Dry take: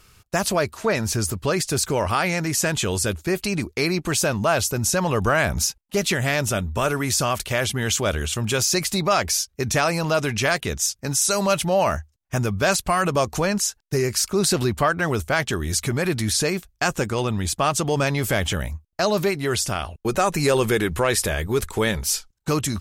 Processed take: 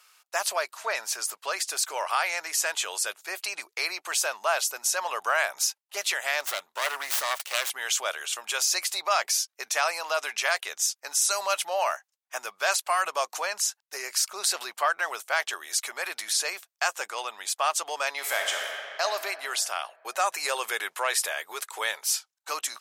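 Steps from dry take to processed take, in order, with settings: 6.40–7.70 s: self-modulated delay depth 0.33 ms; high-pass 680 Hz 24 dB/octave; 18.12–19.01 s: reverb throw, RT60 2.6 s, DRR 0.5 dB; trim -3 dB

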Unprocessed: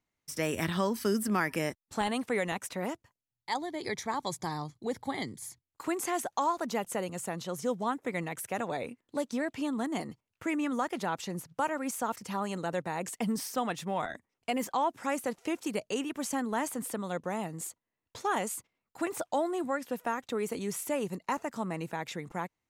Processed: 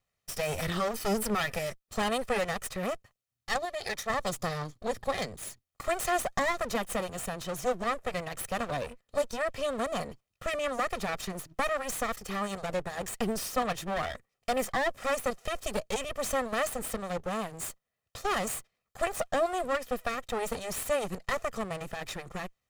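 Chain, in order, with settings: comb filter that takes the minimum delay 1.6 ms; 3.65–4.10 s: bass shelf 450 Hz -9 dB; trim +4 dB

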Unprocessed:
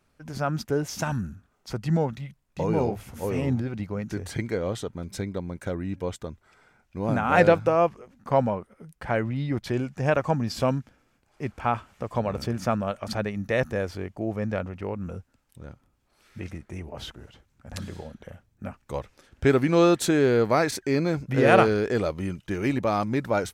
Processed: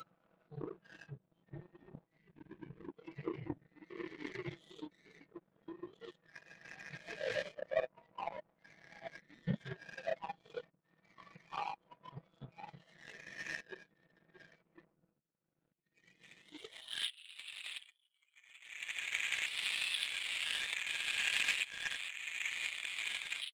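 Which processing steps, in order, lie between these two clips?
reverse spectral sustain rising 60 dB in 2.99 s; monotone LPC vocoder at 8 kHz 200 Hz; saturation -12.5 dBFS, distortion -11 dB; whisper effect; high-pass sweep 170 Hz -> 2.7 kHz, 16.40–17.11 s; compression 3:1, threshold -32 dBFS, peak gain reduction 14 dB; comb 6.1 ms, depth 50%; spectral noise reduction 21 dB; power-law waveshaper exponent 2; time-frequency box 2.19–2.89 s, 220–1500 Hz -14 dB; trim +5.5 dB

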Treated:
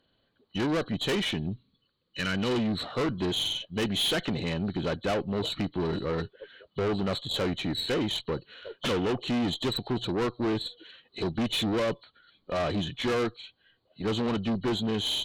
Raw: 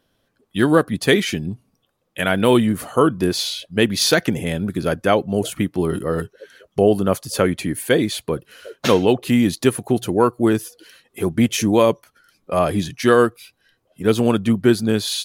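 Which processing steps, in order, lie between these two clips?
knee-point frequency compression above 2.9 kHz 4:1; 1.50–2.78 s: peaking EQ 710 Hz -15 dB 0.64 oct; valve stage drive 21 dB, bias 0.4; trim -3.5 dB

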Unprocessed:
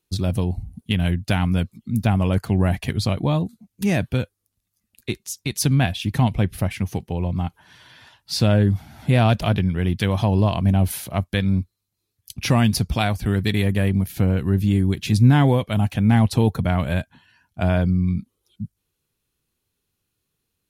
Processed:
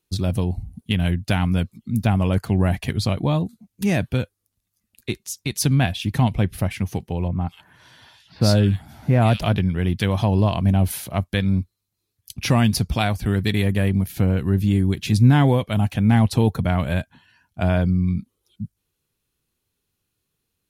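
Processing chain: 7.28–9.39 s: bands offset in time lows, highs 130 ms, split 2.2 kHz

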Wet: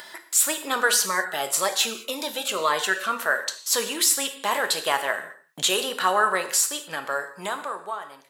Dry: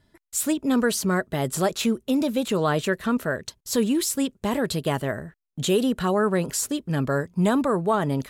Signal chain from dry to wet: fade out at the end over 2.07 s; Chebyshev high-pass 1 kHz, order 2; upward compressor, threshold -35 dBFS; gated-style reverb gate 240 ms falling, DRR 7 dB; 1.06–3.19 s: Shepard-style phaser falling 1.9 Hz; trim +7.5 dB

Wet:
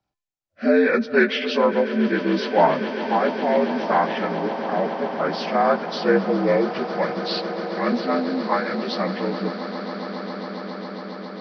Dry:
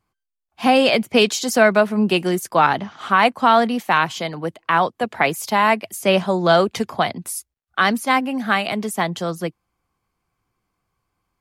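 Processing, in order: frequency axis rescaled in octaves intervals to 77%; rotary cabinet horn 0.65 Hz; echo with a slow build-up 137 ms, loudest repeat 8, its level -16.5 dB

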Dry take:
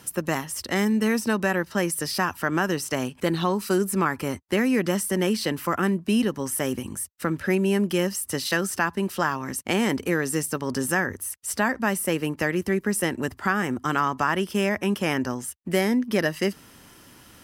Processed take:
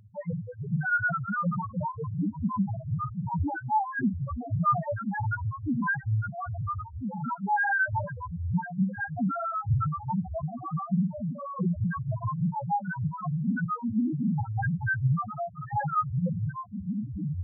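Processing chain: spectrum inverted on a logarithmic axis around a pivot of 560 Hz; ever faster or slower copies 270 ms, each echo -3 st, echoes 3, each echo -6 dB; loudest bins only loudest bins 1; trim +5 dB

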